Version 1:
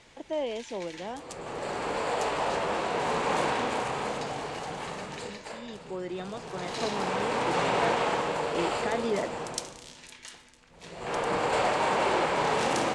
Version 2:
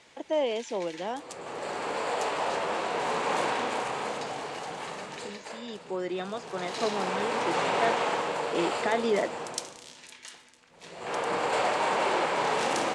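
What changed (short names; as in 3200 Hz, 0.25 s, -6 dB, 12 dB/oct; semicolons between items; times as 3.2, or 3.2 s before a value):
speech +5.0 dB; master: add HPF 270 Hz 6 dB/oct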